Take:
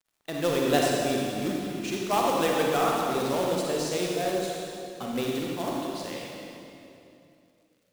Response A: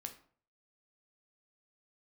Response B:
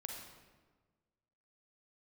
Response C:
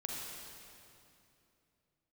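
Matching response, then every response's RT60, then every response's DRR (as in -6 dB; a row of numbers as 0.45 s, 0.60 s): C; 0.50 s, 1.4 s, 2.8 s; 5.0 dB, 1.0 dB, -2.5 dB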